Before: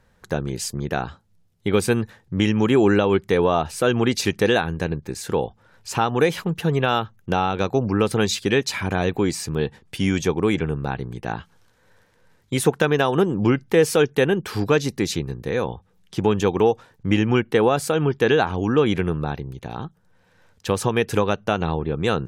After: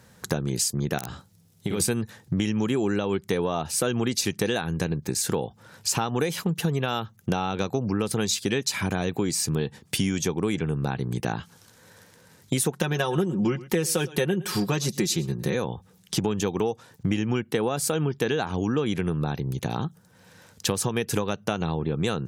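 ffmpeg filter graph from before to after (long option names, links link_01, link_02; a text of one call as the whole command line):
ffmpeg -i in.wav -filter_complex "[0:a]asettb=1/sr,asplit=3[link_01][link_02][link_03];[link_01]atrim=end=0.984[link_04];[link_02]atrim=start=0.98:end=1.8,asetpts=PTS-STARTPTS,afade=type=in:duration=0.004:curve=qsin,afade=type=out:start_time=0.816:duration=0.004:curve=qsin,acompressor=threshold=-31dB:ratio=4:attack=3.2:release=140:knee=1:detection=peak,aeval=exprs='(mod(11.2*val(0)+1,2)-1)/11.2':channel_layout=same,asplit=2[link_05][link_06];[link_06]adelay=48,volume=-5dB[link_07];[link_05][link_07]amix=inputs=2:normalize=0,atrim=end_sample=36162[link_08];[link_03]atrim=start=1.796[link_09];[link_04][link_08]acrossfade=duration=0.004:curve1=hsin:curve2=qsin[link_10];[link_10][link_09]acrossfade=duration=0.004:curve1=qsin:curve2=hsin,asettb=1/sr,asplit=3[link_11][link_12][link_13];[link_11]atrim=end=12.724[link_14];[link_12]atrim=start=12.72:end=15.55,asetpts=PTS-STARTPTS,afade=type=in:duration=0.004:curve=qsin,afade=type=out:start_time=2.826:duration=0.004:curve=qsin,aecho=1:1:5.5:0.68,atrim=end_sample=124803,aecho=1:1:112:0.0794,atrim=end_sample=124803[link_15];[link_13]atrim=start=15.546[link_16];[link_14][link_15]acrossfade=duration=0.004:curve1=hsin:curve2=qsin[link_17];[link_17][link_16]acrossfade=duration=0.004:curve1=qsin:curve2=hsin,highpass=120,bass=frequency=250:gain=6,treble=frequency=4000:gain=10,acompressor=threshold=-29dB:ratio=5,volume=5.5dB" out.wav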